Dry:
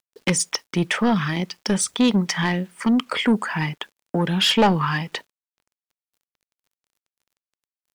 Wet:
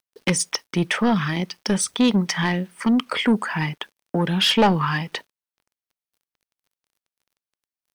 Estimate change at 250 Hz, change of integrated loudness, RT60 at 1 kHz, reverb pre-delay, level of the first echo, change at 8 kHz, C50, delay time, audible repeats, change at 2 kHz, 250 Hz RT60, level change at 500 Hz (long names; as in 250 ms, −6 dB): 0.0 dB, 0.0 dB, no reverb audible, no reverb audible, no echo audible, −1.0 dB, no reverb audible, no echo audible, no echo audible, 0.0 dB, no reverb audible, 0.0 dB